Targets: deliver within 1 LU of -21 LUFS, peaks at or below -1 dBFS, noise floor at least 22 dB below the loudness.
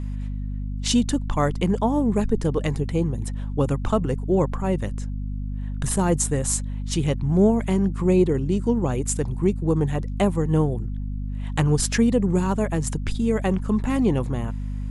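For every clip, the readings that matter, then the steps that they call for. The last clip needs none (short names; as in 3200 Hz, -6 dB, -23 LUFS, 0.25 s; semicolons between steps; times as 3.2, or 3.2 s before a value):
hum 50 Hz; harmonics up to 250 Hz; hum level -26 dBFS; loudness -23.5 LUFS; peak -5.5 dBFS; loudness target -21.0 LUFS
-> de-hum 50 Hz, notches 5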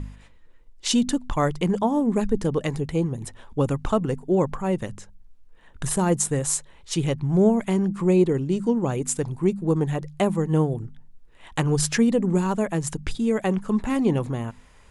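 hum none; loudness -24.0 LUFS; peak -6.5 dBFS; loudness target -21.0 LUFS
-> gain +3 dB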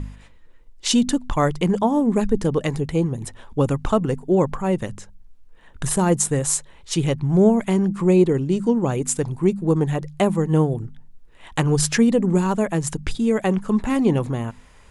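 loudness -21.0 LUFS; peak -3.5 dBFS; noise floor -48 dBFS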